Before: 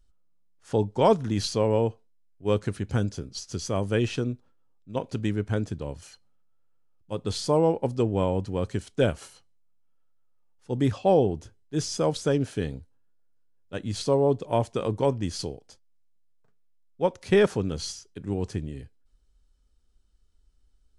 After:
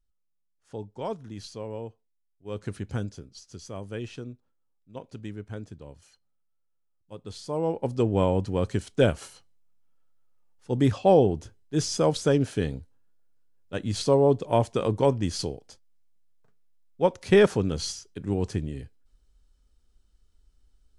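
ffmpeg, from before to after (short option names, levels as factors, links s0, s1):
-af "volume=2.99,afade=t=in:st=2.5:d=0.24:silence=0.316228,afade=t=out:st=2.74:d=0.63:silence=0.421697,afade=t=in:st=7.47:d=0.7:silence=0.237137"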